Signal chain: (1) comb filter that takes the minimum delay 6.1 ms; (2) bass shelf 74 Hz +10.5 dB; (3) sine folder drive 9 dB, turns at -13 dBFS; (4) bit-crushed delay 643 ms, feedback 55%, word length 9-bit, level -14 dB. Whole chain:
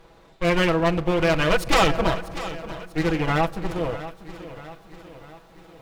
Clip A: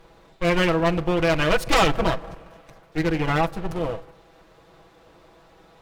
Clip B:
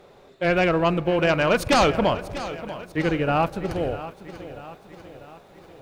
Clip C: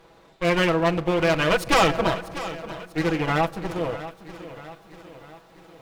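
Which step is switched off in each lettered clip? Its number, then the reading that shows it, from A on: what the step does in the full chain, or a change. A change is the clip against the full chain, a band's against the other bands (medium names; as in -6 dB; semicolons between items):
4, crest factor change -2.0 dB; 1, 500 Hz band +2.0 dB; 2, 125 Hz band -2.0 dB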